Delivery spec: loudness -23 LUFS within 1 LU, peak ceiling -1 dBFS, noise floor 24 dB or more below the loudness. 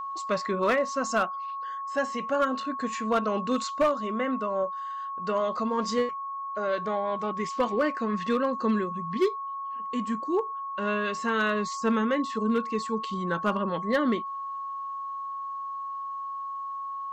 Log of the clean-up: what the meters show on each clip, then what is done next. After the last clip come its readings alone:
clipped samples 0.3%; clipping level -17.5 dBFS; steady tone 1.1 kHz; tone level -32 dBFS; loudness -29.0 LUFS; peak level -17.5 dBFS; loudness target -23.0 LUFS
-> clip repair -17.5 dBFS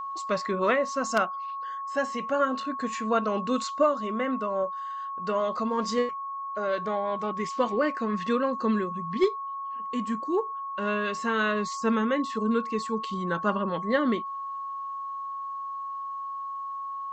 clipped samples 0.0%; steady tone 1.1 kHz; tone level -32 dBFS
-> band-stop 1.1 kHz, Q 30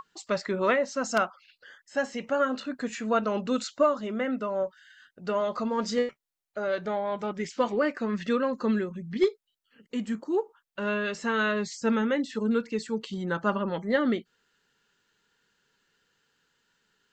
steady tone not found; loudness -29.0 LUFS; peak level -9.5 dBFS; loudness target -23.0 LUFS
-> trim +6 dB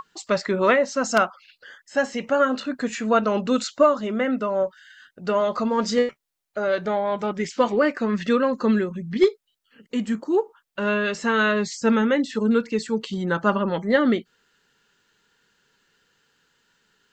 loudness -23.0 LUFS; peak level -3.5 dBFS; noise floor -73 dBFS

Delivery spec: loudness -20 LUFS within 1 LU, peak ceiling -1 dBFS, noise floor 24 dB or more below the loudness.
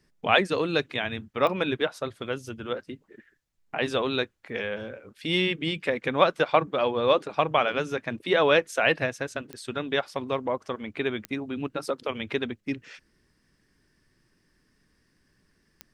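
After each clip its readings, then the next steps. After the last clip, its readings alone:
clicks found 4; loudness -27.0 LUFS; peak level -3.5 dBFS; loudness target -20.0 LUFS
-> de-click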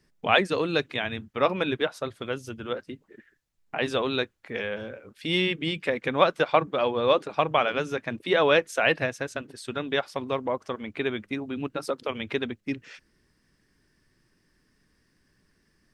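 clicks found 0; loudness -27.0 LUFS; peak level -3.5 dBFS; loudness target -20.0 LUFS
-> trim +7 dB; peak limiter -1 dBFS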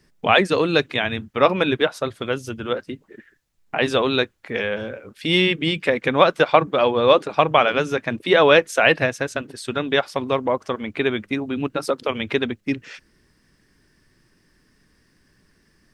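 loudness -20.5 LUFS; peak level -1.0 dBFS; noise floor -62 dBFS

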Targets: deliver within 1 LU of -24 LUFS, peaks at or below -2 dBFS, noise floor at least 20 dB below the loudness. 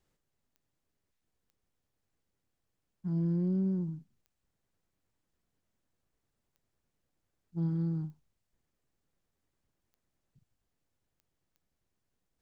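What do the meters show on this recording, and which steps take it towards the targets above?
clicks found 8; loudness -33.0 LUFS; peak level -24.0 dBFS; loudness target -24.0 LUFS
-> de-click; trim +9 dB

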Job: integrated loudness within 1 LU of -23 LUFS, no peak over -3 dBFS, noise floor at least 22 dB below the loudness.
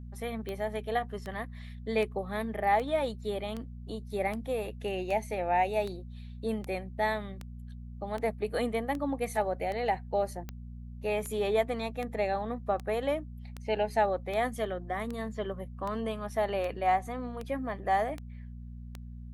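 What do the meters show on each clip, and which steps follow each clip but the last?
clicks found 25; hum 60 Hz; highest harmonic 240 Hz; hum level -41 dBFS; loudness -32.5 LUFS; peak level -15.0 dBFS; loudness target -23.0 LUFS
-> de-click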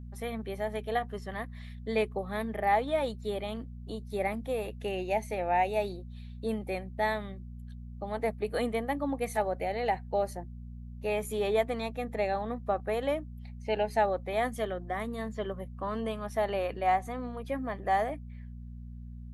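clicks found 0; hum 60 Hz; highest harmonic 240 Hz; hum level -41 dBFS
-> de-hum 60 Hz, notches 4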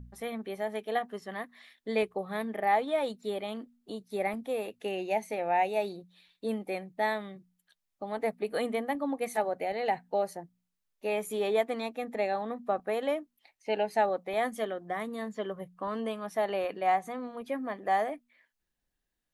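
hum not found; loudness -32.5 LUFS; peak level -15.0 dBFS; loudness target -23.0 LUFS
-> trim +9.5 dB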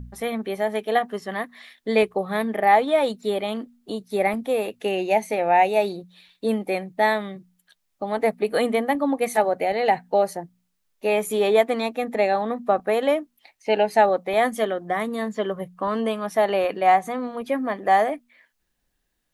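loudness -23.0 LUFS; peak level -5.5 dBFS; noise floor -74 dBFS

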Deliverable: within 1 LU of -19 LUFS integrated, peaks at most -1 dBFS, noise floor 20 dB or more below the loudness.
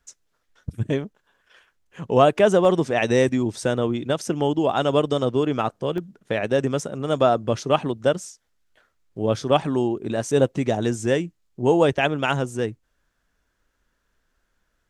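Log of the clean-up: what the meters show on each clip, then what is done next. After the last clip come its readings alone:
dropouts 2; longest dropout 1.2 ms; loudness -22.0 LUFS; peak level -3.0 dBFS; loudness target -19.0 LUFS
-> interpolate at 2.65/5.98 s, 1.2 ms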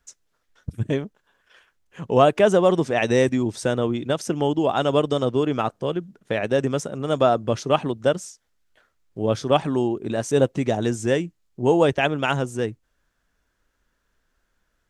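dropouts 0; loudness -22.0 LUFS; peak level -3.0 dBFS; loudness target -19.0 LUFS
-> trim +3 dB; peak limiter -1 dBFS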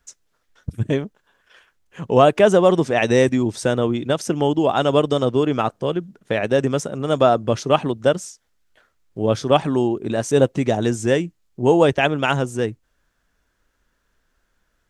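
loudness -19.0 LUFS; peak level -1.0 dBFS; noise floor -69 dBFS

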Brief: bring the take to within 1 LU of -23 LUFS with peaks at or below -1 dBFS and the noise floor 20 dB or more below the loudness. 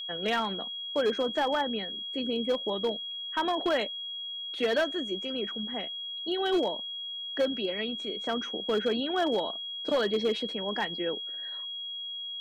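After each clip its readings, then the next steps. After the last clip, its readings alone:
clipped samples 0.8%; clipping level -21.0 dBFS; steady tone 3.3 kHz; tone level -35 dBFS; loudness -30.5 LUFS; peak level -21.0 dBFS; loudness target -23.0 LUFS
-> clip repair -21 dBFS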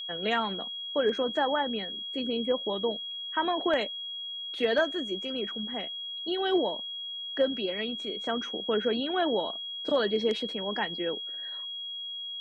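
clipped samples 0.0%; steady tone 3.3 kHz; tone level -35 dBFS
-> band-stop 3.3 kHz, Q 30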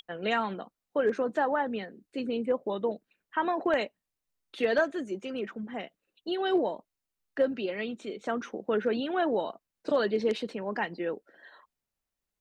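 steady tone not found; loudness -31.0 LUFS; peak level -12.5 dBFS; loudness target -23.0 LUFS
-> trim +8 dB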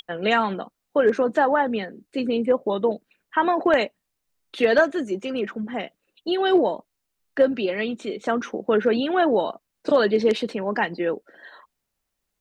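loudness -23.0 LUFS; peak level -4.5 dBFS; noise floor -80 dBFS

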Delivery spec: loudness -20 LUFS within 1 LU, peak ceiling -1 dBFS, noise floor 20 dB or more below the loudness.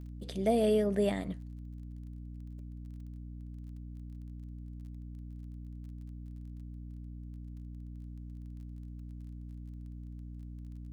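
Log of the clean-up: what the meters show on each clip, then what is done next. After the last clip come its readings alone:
tick rate 23 per s; hum 60 Hz; highest harmonic 300 Hz; hum level -42 dBFS; loudness -39.0 LUFS; peak level -16.5 dBFS; loudness target -20.0 LUFS
-> de-click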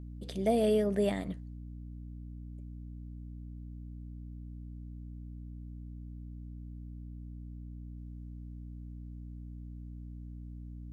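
tick rate 0 per s; hum 60 Hz; highest harmonic 300 Hz; hum level -42 dBFS
-> hum notches 60/120/180/240/300 Hz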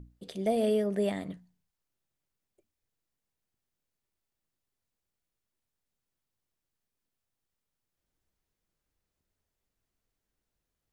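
hum not found; loudness -30.0 LUFS; peak level -17.0 dBFS; loudness target -20.0 LUFS
-> trim +10 dB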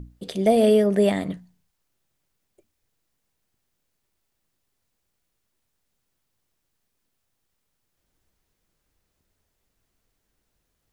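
loudness -20.0 LUFS; peak level -7.0 dBFS; noise floor -77 dBFS

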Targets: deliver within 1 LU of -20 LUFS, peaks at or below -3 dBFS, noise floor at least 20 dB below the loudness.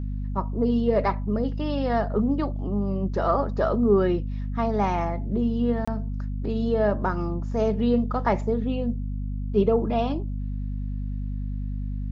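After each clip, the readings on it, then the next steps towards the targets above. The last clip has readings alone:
dropouts 1; longest dropout 25 ms; hum 50 Hz; highest harmonic 250 Hz; hum level -27 dBFS; loudness -26.0 LUFS; peak level -9.0 dBFS; loudness target -20.0 LUFS
-> interpolate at 5.85 s, 25 ms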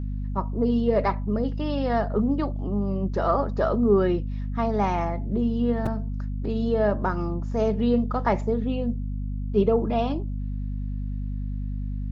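dropouts 0; hum 50 Hz; highest harmonic 250 Hz; hum level -27 dBFS
-> hum notches 50/100/150/200/250 Hz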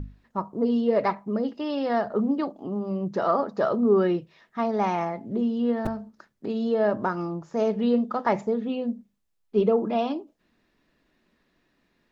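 hum not found; loudness -26.0 LUFS; peak level -10.0 dBFS; loudness target -20.0 LUFS
-> trim +6 dB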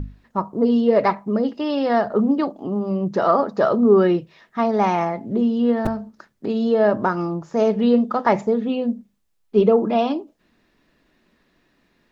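loudness -20.0 LUFS; peak level -4.0 dBFS; noise floor -65 dBFS

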